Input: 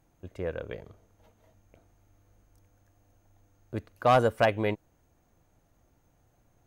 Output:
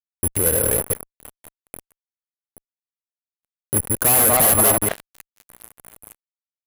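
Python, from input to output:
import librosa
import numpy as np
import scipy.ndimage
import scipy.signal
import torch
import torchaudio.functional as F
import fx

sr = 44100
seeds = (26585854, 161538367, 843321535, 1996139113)

y = fx.reverse_delay(x, sr, ms=104, wet_db=-7)
y = fx.lowpass(y, sr, hz=3100.0, slope=6)
y = fx.level_steps(y, sr, step_db=15)
y = fx.add_hum(y, sr, base_hz=60, snr_db=25)
y = (np.kron(scipy.signal.resample_poly(y, 1, 4), np.eye(4)[0]) * 4)[:len(y)]
y = fx.echo_stepped(y, sr, ms=239, hz=820.0, octaves=0.7, feedback_pct=70, wet_db=-10.0)
y = fx.fuzz(y, sr, gain_db=41.0, gate_db=-43.0)
y = y * 10.0 ** (3.0 / 20.0)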